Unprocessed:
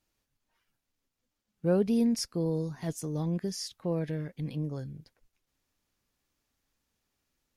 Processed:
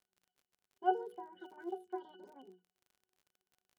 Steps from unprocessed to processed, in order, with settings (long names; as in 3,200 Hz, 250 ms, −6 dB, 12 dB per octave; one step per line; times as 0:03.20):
wrong playback speed 7.5 ips tape played at 15 ips
high-pass filter 330 Hz 12 dB per octave
mains-hum notches 60/120/180/240/300/360/420/480 Hz
resonances in every octave F#, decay 0.23 s
flanger 0.84 Hz, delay 3.8 ms, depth 5.9 ms, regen +30%
surface crackle 46 per second −67 dBFS
level +11.5 dB